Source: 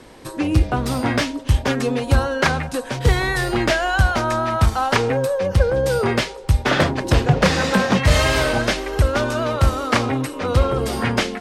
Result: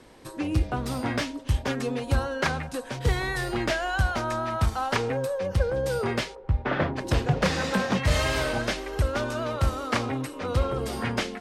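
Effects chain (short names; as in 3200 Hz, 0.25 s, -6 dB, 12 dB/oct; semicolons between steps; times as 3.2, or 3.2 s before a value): 6.34–6.95 LPF 1400 Hz -> 2600 Hz 12 dB/oct; 9.8–10.36 crackle 14/s -46 dBFS; gain -8 dB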